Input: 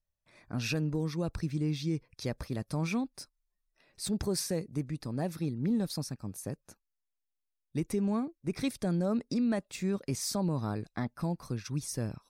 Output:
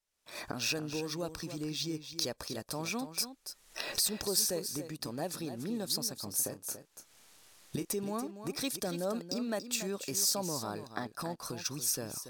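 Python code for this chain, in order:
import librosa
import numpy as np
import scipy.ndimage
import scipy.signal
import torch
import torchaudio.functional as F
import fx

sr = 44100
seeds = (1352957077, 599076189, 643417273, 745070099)

p1 = fx.recorder_agc(x, sr, target_db=-26.0, rise_db_per_s=45.0, max_gain_db=30)
p2 = fx.bass_treble(p1, sr, bass_db=-14, treble_db=9)
p3 = fx.notch(p2, sr, hz=2100.0, q=6.0)
p4 = fx.quant_dither(p3, sr, seeds[0], bits=8, dither='none')
p5 = p3 + (p4 * librosa.db_to_amplitude(-12.0))
p6 = fx.doubler(p5, sr, ms=29.0, db=-10.0, at=(6.14, 7.85))
p7 = p6 + 10.0 ** (-10.5 / 20.0) * np.pad(p6, (int(284 * sr / 1000.0), 0))[:len(p6)]
p8 = np.interp(np.arange(len(p7)), np.arange(len(p7))[::2], p7[::2])
y = p8 * librosa.db_to_amplitude(-2.0)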